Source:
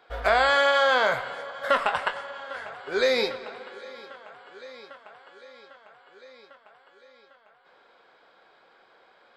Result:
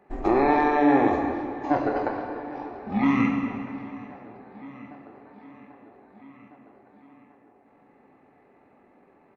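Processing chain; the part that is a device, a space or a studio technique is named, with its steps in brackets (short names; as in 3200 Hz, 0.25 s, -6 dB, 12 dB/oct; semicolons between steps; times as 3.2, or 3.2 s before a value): monster voice (pitch shift -11 st; low shelf 200 Hz +6.5 dB; reverb RT60 2.4 s, pre-delay 17 ms, DRR 2.5 dB); gain -2 dB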